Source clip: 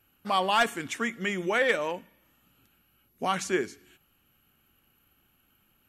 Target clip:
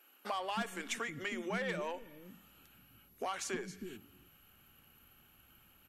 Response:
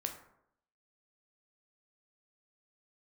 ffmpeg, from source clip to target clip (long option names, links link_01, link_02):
-filter_complex "[0:a]aeval=exprs='(tanh(7.94*val(0)+0.2)-tanh(0.2))/7.94':channel_layout=same,acompressor=threshold=-38dB:ratio=20,acrossover=split=300[link_01][link_02];[link_01]adelay=320[link_03];[link_03][link_02]amix=inputs=2:normalize=0,volume=4dB"